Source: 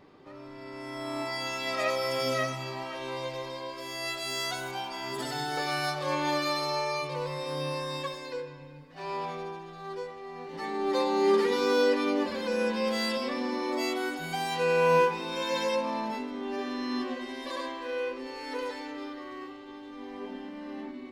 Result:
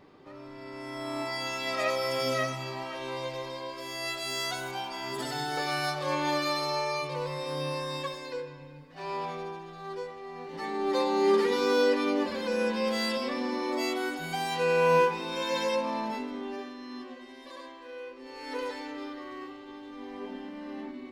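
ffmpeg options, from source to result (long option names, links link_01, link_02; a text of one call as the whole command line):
ffmpeg -i in.wav -filter_complex "[0:a]asplit=3[link_01][link_02][link_03];[link_01]atrim=end=16.74,asetpts=PTS-STARTPTS,afade=type=out:start_time=16.34:duration=0.4:silence=0.334965[link_04];[link_02]atrim=start=16.74:end=18.16,asetpts=PTS-STARTPTS,volume=-9.5dB[link_05];[link_03]atrim=start=18.16,asetpts=PTS-STARTPTS,afade=type=in:duration=0.4:silence=0.334965[link_06];[link_04][link_05][link_06]concat=n=3:v=0:a=1" out.wav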